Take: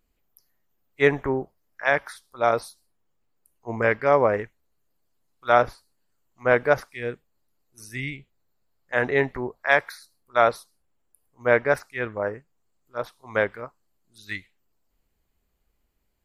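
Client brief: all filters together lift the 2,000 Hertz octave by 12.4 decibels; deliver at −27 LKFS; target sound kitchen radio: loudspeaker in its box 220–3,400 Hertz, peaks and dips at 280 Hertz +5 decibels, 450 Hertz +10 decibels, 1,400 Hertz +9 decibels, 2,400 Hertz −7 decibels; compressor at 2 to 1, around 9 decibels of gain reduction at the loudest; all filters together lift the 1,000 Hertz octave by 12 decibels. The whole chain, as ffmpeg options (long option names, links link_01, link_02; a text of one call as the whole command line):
ffmpeg -i in.wav -af "equalizer=frequency=1000:width_type=o:gain=8.5,equalizer=frequency=2000:width_type=o:gain=8.5,acompressor=threshold=-23dB:ratio=2,highpass=220,equalizer=frequency=280:width_type=q:width=4:gain=5,equalizer=frequency=450:width_type=q:width=4:gain=10,equalizer=frequency=1400:width_type=q:width=4:gain=9,equalizer=frequency=2400:width_type=q:width=4:gain=-7,lowpass=frequency=3400:width=0.5412,lowpass=frequency=3400:width=1.3066,volume=-5.5dB" out.wav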